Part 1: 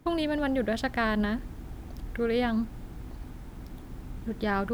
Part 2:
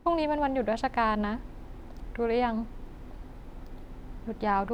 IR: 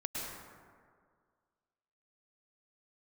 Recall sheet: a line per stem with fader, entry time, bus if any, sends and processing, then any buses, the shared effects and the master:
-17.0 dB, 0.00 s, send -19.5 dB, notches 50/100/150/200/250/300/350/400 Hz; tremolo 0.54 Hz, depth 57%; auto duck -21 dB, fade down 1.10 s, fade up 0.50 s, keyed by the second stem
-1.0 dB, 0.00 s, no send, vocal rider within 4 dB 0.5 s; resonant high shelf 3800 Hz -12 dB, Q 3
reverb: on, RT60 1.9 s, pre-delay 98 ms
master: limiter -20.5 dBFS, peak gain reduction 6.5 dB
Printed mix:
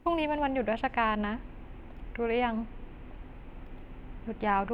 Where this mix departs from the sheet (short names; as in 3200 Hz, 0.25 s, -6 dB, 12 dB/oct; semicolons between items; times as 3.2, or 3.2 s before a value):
stem 1 -17.0 dB -> -10.5 dB; master: missing limiter -20.5 dBFS, peak gain reduction 6.5 dB